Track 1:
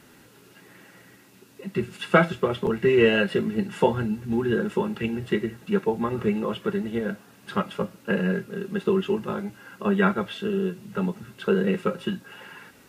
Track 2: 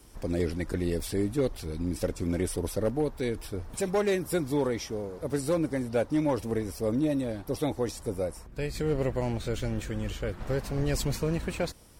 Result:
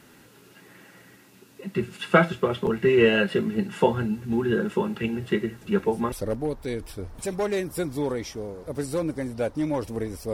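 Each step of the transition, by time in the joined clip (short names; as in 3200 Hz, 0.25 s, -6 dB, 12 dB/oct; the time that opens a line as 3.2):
track 1
5.57 add track 2 from 2.12 s 0.55 s -16 dB
6.12 switch to track 2 from 2.67 s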